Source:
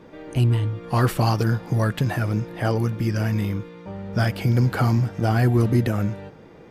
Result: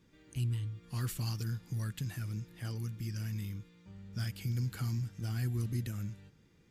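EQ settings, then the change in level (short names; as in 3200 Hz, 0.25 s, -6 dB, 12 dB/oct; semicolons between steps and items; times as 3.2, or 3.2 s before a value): passive tone stack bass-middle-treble 6-0-2; high shelf 3900 Hz +7.5 dB; bell 7100 Hz +5 dB 0.23 oct; 0.0 dB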